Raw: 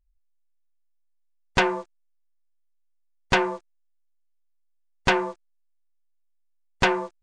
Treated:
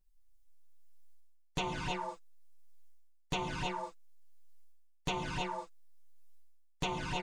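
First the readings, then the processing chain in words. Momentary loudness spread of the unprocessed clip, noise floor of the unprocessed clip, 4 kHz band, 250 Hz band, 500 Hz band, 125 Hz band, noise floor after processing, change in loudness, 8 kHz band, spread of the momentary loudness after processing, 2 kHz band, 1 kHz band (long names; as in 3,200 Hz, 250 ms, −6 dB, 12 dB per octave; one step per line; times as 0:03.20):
11 LU, −68 dBFS, −9.0 dB, −10.5 dB, −14.0 dB, −5.0 dB, −65 dBFS, −13.5 dB, −6.5 dB, 8 LU, −15.5 dB, −10.0 dB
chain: camcorder AGC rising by 6.9 dB per second
tilt shelving filter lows +3 dB, about 1,400 Hz
comb filter 6.6 ms, depth 59%
reverb whose tail is shaped and stops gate 340 ms rising, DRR 4 dB
flanger swept by the level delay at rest 11.9 ms, full sweep at −16 dBFS
reversed playback
downward compressor 4 to 1, threshold −38 dBFS, peak gain reduction 23.5 dB
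reversed playback
high-shelf EQ 2,700 Hz +12 dB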